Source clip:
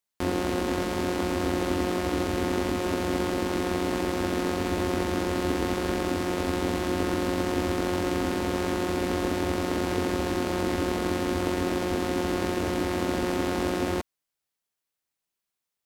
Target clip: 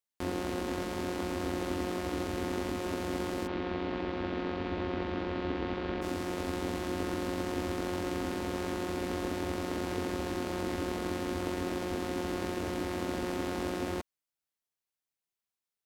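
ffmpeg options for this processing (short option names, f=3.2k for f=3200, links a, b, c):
-filter_complex "[0:a]asplit=3[a][b][c];[a]afade=t=out:st=3.46:d=0.02[d];[b]lowpass=f=3.9k:w=0.5412,lowpass=f=3.9k:w=1.3066,afade=t=in:st=3.46:d=0.02,afade=t=out:st=6.01:d=0.02[e];[c]afade=t=in:st=6.01:d=0.02[f];[d][e][f]amix=inputs=3:normalize=0,volume=-7dB"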